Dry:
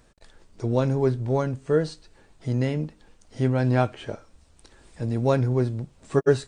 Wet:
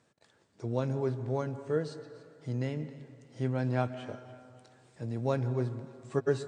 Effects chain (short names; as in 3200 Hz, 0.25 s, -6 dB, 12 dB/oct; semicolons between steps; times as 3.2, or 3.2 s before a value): Chebyshev band-pass 110–8300 Hz, order 3; thin delay 0.289 s, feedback 45%, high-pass 1500 Hz, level -18 dB; on a send at -13 dB: reverb RT60 2.4 s, pre-delay 0.122 s; on the sum: gain -8.5 dB